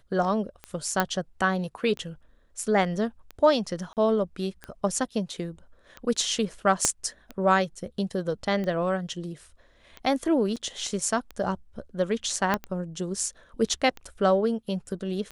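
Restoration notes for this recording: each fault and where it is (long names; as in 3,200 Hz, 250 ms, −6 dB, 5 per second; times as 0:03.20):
scratch tick 45 rpm −22 dBFS
0:01.00: click −8 dBFS
0:03.93–0:03.97: drop-out 38 ms
0:06.85: click −7 dBFS
0:10.56–0:10.57: drop-out 6.4 ms
0:12.54: click −10 dBFS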